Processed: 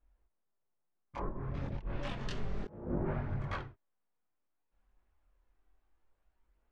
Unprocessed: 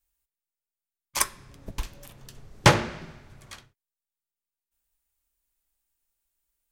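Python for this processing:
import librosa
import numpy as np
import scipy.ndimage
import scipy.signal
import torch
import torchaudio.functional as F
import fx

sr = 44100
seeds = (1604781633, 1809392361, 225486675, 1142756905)

y = fx.env_lowpass_down(x, sr, base_hz=530.0, full_db=-25.5)
y = fx.lowpass(y, sr, hz=fx.steps((0.0, 1000.0), (1.55, 2900.0), (2.78, 1300.0)), slope=12)
y = fx.over_compress(y, sr, threshold_db=-43.0, ratio=-1.0)
y = fx.chorus_voices(y, sr, voices=2, hz=0.3, base_ms=23, depth_ms=2.9, mix_pct=50)
y = F.gain(torch.from_numpy(y), 6.5).numpy()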